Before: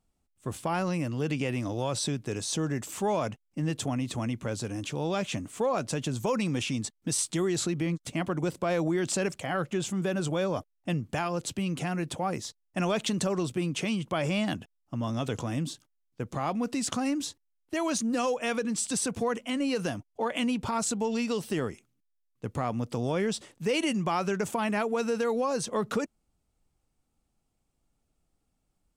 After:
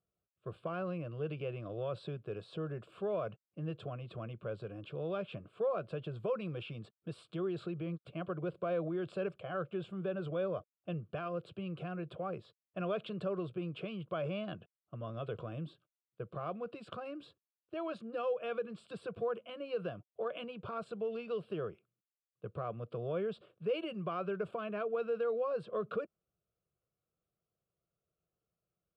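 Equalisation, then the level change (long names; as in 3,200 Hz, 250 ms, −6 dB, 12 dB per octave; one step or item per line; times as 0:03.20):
band-pass filter 180–2,300 Hz
low-shelf EQ 380 Hz +9 dB
phaser with its sweep stopped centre 1,300 Hz, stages 8
−7.5 dB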